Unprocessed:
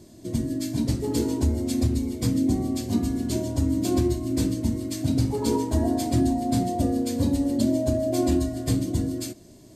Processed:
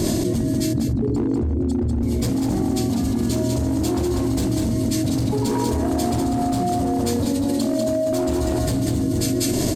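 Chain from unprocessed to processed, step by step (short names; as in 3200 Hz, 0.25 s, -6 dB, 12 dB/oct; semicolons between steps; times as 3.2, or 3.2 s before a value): 0.73–2.03 formant sharpening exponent 2; 7.25–8.12 HPF 310 Hz 6 dB/oct; hard clip -20.5 dBFS, distortion -13 dB; on a send: echo 0.194 s -4.5 dB; on the sum: fast leveller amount 100%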